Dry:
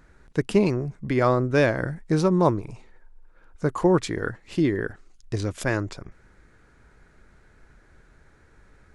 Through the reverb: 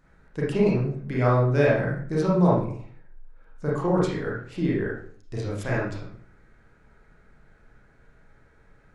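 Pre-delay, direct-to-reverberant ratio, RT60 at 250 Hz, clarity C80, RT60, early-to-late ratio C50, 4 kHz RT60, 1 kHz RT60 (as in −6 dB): 29 ms, −6.0 dB, 0.60 s, 7.0 dB, 0.50 s, 1.5 dB, 0.40 s, 0.50 s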